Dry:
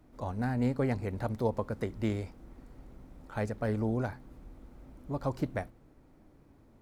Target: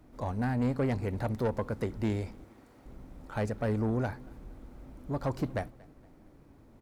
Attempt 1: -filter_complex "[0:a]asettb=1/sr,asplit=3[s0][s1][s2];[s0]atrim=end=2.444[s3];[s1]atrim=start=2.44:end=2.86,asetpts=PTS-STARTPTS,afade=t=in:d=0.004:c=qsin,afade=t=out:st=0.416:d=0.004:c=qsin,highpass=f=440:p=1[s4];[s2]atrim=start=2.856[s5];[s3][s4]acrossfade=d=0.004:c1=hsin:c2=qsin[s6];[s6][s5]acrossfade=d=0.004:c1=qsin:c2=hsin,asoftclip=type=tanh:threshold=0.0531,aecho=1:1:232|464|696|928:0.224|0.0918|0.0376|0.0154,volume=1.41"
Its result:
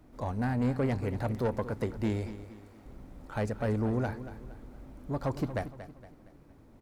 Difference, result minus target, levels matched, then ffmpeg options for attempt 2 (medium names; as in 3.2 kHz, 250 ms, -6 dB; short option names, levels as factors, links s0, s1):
echo-to-direct +11.5 dB
-filter_complex "[0:a]asettb=1/sr,asplit=3[s0][s1][s2];[s0]atrim=end=2.444[s3];[s1]atrim=start=2.44:end=2.86,asetpts=PTS-STARTPTS,afade=t=in:d=0.004:c=qsin,afade=t=out:st=0.416:d=0.004:c=qsin,highpass=f=440:p=1[s4];[s2]atrim=start=2.856[s5];[s3][s4]acrossfade=d=0.004:c1=hsin:c2=qsin[s6];[s6][s5]acrossfade=d=0.004:c1=qsin:c2=hsin,asoftclip=type=tanh:threshold=0.0531,aecho=1:1:232|464|696:0.0596|0.0244|0.01,volume=1.41"